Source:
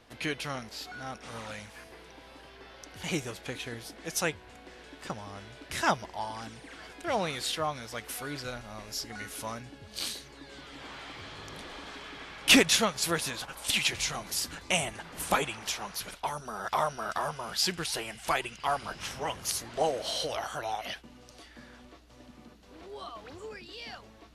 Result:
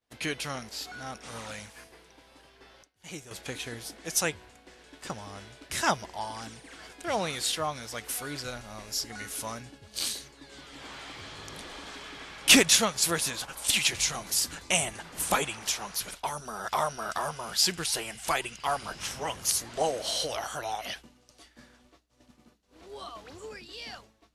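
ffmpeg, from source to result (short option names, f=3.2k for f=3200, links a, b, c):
-filter_complex "[0:a]asplit=3[a][b][c];[a]atrim=end=2.832[d];[b]atrim=start=2.828:end=3.312,asetpts=PTS-STARTPTS,volume=-10.5dB[e];[c]atrim=start=3.308[f];[d][e]acrossfade=d=0.004:c1=hsin:c2=hsin[g];[g][f]acrossfade=d=0.004:c1=hsin:c2=hsin,equalizer=f=7.8k:t=o:w=1.4:g=5.5,agate=range=-33dB:threshold=-44dB:ratio=3:detection=peak,highshelf=f=11k:g=4"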